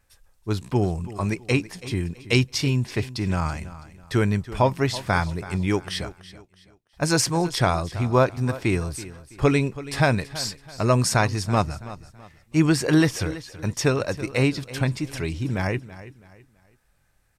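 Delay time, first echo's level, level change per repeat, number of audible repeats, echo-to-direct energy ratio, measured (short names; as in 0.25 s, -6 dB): 0.329 s, -16.0 dB, -9.5 dB, 2, -15.5 dB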